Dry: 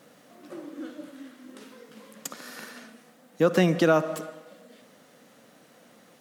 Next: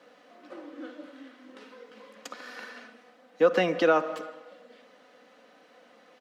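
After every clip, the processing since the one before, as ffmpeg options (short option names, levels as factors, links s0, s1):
-filter_complex "[0:a]acrossover=split=310 4900:gain=0.158 1 0.1[s0][s1][s2];[s0][s1][s2]amix=inputs=3:normalize=0,bandreject=f=3600:w=30,aecho=1:1:4:0.39"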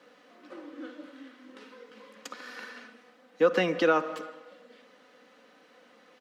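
-af "equalizer=f=670:t=o:w=0.47:g=-6"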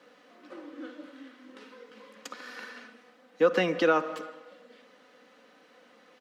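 -af anull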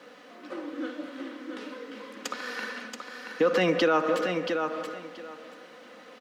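-filter_complex "[0:a]alimiter=limit=0.0841:level=0:latency=1:release=89,asplit=2[s0][s1];[s1]aecho=0:1:679|1358|2037:0.501|0.0902|0.0162[s2];[s0][s2]amix=inputs=2:normalize=0,volume=2.37"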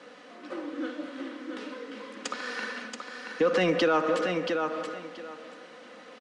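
-filter_complex "[0:a]asplit=2[s0][s1];[s1]asoftclip=type=tanh:threshold=0.0562,volume=0.447[s2];[s0][s2]amix=inputs=2:normalize=0,aresample=22050,aresample=44100,volume=0.75"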